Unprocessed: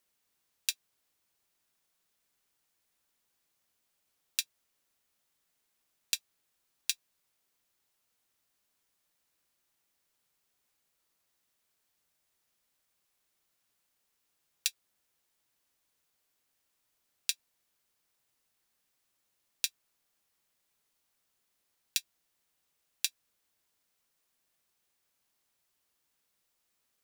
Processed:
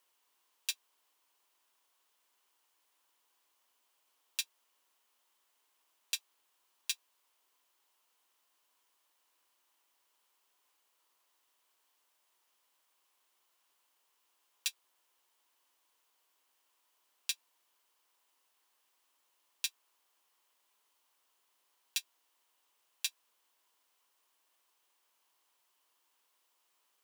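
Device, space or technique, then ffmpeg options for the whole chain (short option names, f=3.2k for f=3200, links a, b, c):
laptop speaker: -af "highpass=f=290:w=0.5412,highpass=f=290:w=1.3066,equalizer=f=1k:t=o:w=0.54:g=10,equalizer=f=3k:t=o:w=0.31:g=5.5,alimiter=limit=-15.5dB:level=0:latency=1:release=14,volume=1.5dB"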